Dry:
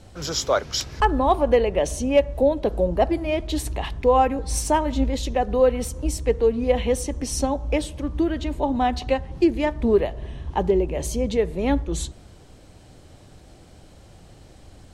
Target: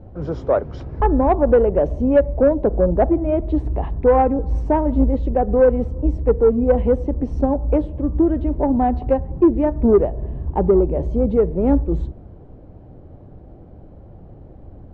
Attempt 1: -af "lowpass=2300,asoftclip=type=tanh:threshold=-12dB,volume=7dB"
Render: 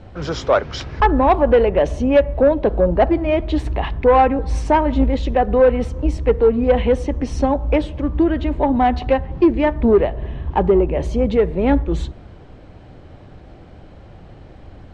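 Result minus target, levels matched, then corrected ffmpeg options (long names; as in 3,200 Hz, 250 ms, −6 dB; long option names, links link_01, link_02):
2,000 Hz band +8.5 dB
-af "lowpass=660,asoftclip=type=tanh:threshold=-12dB,volume=7dB"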